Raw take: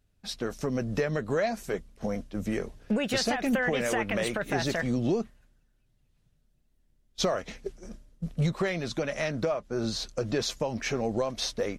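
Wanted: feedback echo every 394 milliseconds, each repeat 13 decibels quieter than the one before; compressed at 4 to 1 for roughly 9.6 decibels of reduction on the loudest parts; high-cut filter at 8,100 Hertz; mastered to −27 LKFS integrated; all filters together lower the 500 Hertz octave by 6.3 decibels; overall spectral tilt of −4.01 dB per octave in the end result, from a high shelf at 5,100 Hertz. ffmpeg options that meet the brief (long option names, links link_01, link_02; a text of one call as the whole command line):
ffmpeg -i in.wav -af "lowpass=8100,equalizer=frequency=500:width_type=o:gain=-8,highshelf=frequency=5100:gain=6,acompressor=threshold=-35dB:ratio=4,aecho=1:1:394|788|1182:0.224|0.0493|0.0108,volume=11.5dB" out.wav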